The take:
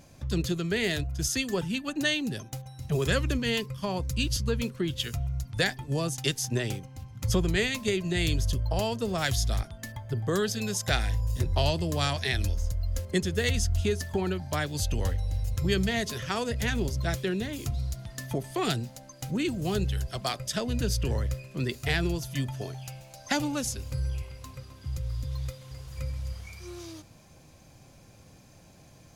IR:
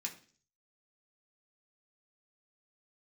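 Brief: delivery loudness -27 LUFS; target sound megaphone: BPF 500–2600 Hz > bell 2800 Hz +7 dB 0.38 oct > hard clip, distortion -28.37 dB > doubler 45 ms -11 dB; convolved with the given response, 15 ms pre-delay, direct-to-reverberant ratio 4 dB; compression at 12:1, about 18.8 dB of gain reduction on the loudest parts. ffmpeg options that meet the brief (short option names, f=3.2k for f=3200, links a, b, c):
-filter_complex "[0:a]acompressor=threshold=-41dB:ratio=12,asplit=2[a][b];[1:a]atrim=start_sample=2205,adelay=15[c];[b][c]afir=irnorm=-1:irlink=0,volume=-3dB[d];[a][d]amix=inputs=2:normalize=0,highpass=500,lowpass=2.6k,equalizer=f=2.8k:t=o:w=0.38:g=7,asoftclip=type=hard:threshold=-35dB,asplit=2[e][f];[f]adelay=45,volume=-11dB[g];[e][g]amix=inputs=2:normalize=0,volume=22.5dB"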